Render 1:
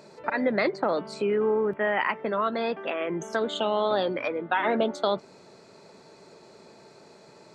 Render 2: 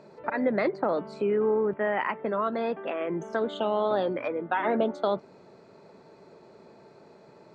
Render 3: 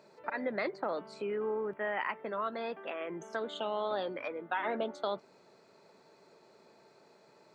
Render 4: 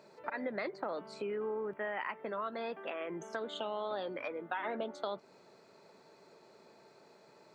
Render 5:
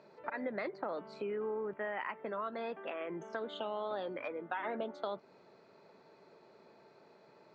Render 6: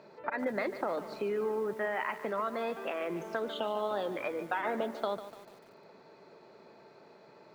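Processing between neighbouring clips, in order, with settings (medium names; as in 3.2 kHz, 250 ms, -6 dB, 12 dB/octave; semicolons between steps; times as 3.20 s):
low-pass 1.4 kHz 6 dB/octave
tilt EQ +2.5 dB/octave; trim -6.5 dB
compression 2:1, threshold -38 dBFS, peak gain reduction 5.5 dB; trim +1 dB
distance through air 150 m
bit-crushed delay 147 ms, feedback 55%, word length 9-bit, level -12 dB; trim +5 dB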